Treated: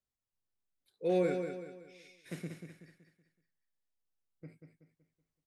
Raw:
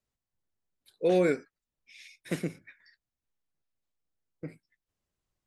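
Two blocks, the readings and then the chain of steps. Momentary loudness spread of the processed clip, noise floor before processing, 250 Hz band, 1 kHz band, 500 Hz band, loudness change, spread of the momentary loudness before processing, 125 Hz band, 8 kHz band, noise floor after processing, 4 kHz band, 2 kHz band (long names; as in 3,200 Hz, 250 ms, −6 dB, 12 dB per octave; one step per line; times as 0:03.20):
23 LU, below −85 dBFS, −5.5 dB, −4.5 dB, −5.0 dB, −6.0 dB, 21 LU, −5.0 dB, −8.5 dB, below −85 dBFS, −7.5 dB, −8.5 dB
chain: harmonic and percussive parts rebalanced percussive −8 dB
on a send: repeating echo 188 ms, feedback 40%, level −7 dB
on the sum: level −5 dB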